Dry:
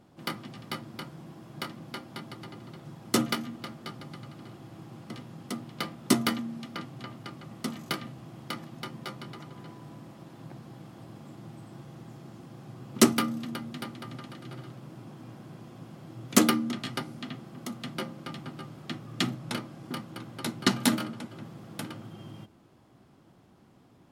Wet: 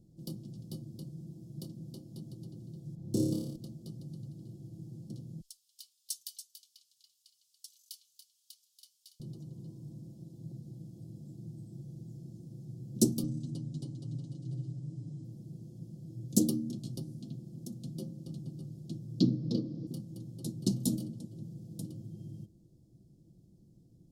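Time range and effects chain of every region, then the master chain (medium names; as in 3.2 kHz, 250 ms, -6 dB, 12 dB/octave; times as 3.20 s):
2.95–3.56 s: treble shelf 3.2 kHz -11.5 dB + flutter echo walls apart 4.9 m, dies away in 0.92 s
5.41–9.20 s: inverse Chebyshev high-pass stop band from 590 Hz, stop band 60 dB + delay 284 ms -9 dB
13.23–15.24 s: Chebyshev low-pass 8.3 kHz, order 3 + comb 7 ms, depth 77%
19.20–19.87 s: resonant high shelf 6.6 kHz -13.5 dB, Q 3 + small resonant body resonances 280/450/1100 Hz, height 14 dB, ringing for 30 ms
whole clip: Chebyshev band-stop 550–5500 Hz, order 2; amplifier tone stack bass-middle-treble 10-0-1; comb 6 ms, depth 40%; trim +14 dB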